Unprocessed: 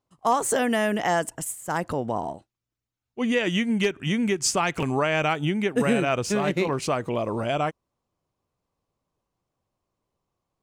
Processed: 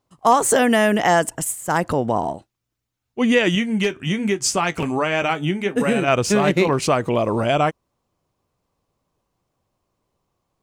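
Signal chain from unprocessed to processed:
0:03.55–0:06.08: flanger 1.2 Hz, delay 9.6 ms, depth 2.3 ms, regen −55%
level +7 dB

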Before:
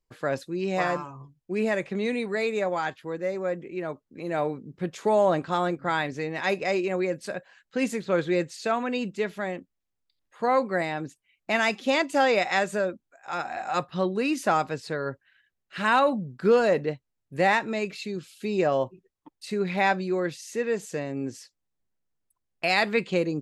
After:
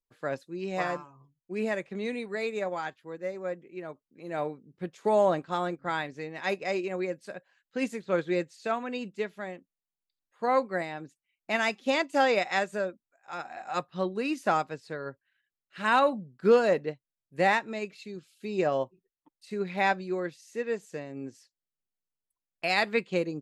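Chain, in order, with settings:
parametric band 62 Hz −12.5 dB 0.73 octaves
expander for the loud parts 1.5 to 1, over −41 dBFS

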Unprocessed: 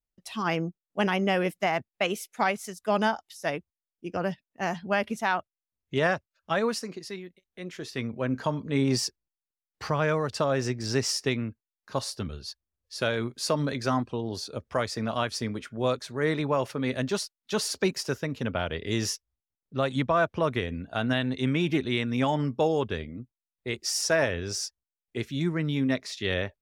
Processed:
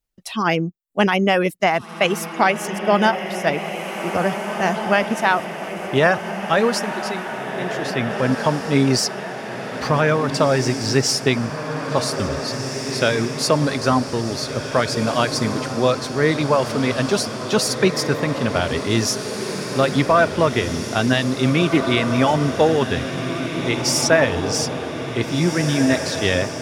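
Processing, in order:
reverb reduction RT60 0.52 s
feedback delay with all-pass diffusion 1,846 ms, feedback 62%, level −7.5 dB
level +9 dB

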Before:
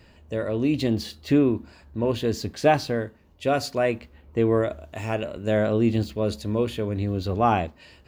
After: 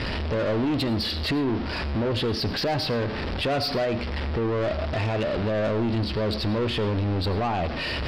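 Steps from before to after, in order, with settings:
converter with a step at zero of −31 dBFS
Butterworth low-pass 5,400 Hz 96 dB per octave
in parallel at +1 dB: downward compressor, threshold −32 dBFS, peak gain reduction 17.5 dB
on the sum: brickwall limiter −15 dBFS, peak gain reduction 10 dB
soft clipping −23 dBFS, distortion −12 dB
on a send at −15 dB: convolution reverb RT60 0.35 s, pre-delay 55 ms
on the sum: level +2 dB

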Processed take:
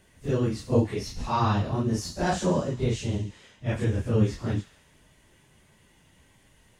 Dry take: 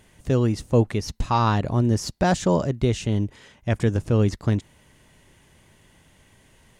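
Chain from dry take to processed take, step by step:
random phases in long frames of 100 ms
delay with a high-pass on its return 69 ms, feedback 66%, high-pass 1,700 Hz, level −11 dB
level −4 dB

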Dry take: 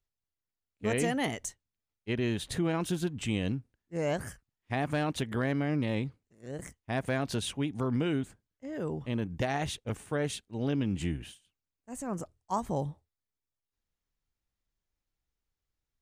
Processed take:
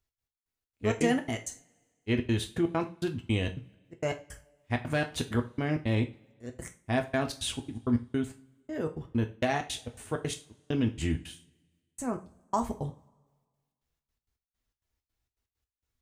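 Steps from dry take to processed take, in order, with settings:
gate pattern "x.x..xx.xx.xx." 164 BPM −60 dB
coupled-rooms reverb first 0.3 s, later 1.6 s, from −26 dB, DRR 4 dB
level +2 dB

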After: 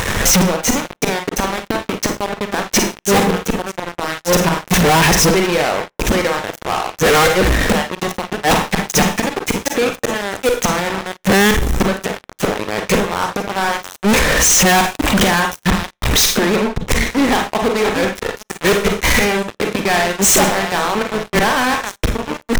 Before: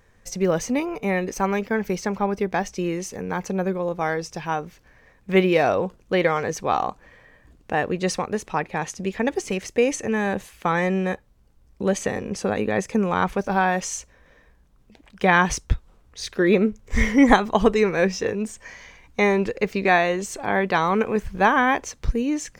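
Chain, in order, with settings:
delay that plays each chunk backwards 677 ms, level −9.5 dB
gate with flip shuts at −19 dBFS, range −38 dB
low-shelf EQ 180 Hz −2.5 dB
fuzz pedal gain 52 dB, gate −58 dBFS
notch filter 4,600 Hz, Q 5.7
on a send at −10.5 dB: convolution reverb RT60 0.30 s, pre-delay 35 ms
on the sum: leveller curve on the samples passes 5
level −3.5 dB

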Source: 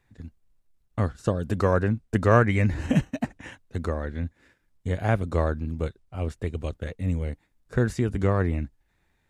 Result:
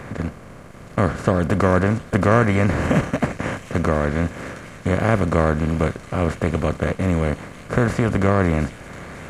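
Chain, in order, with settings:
compressor on every frequency bin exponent 0.4
delay with a high-pass on its return 717 ms, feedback 73%, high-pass 3,200 Hz, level −7.5 dB

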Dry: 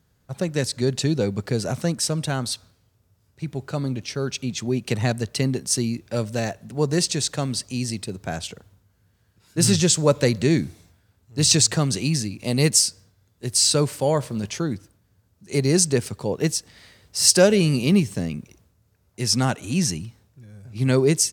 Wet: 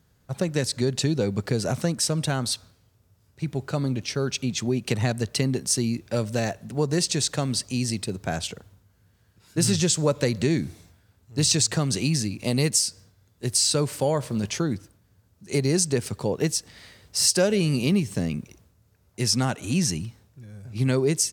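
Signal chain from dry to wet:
downward compressor 2.5 to 1, threshold −22 dBFS, peak gain reduction 8.5 dB
level +1.5 dB

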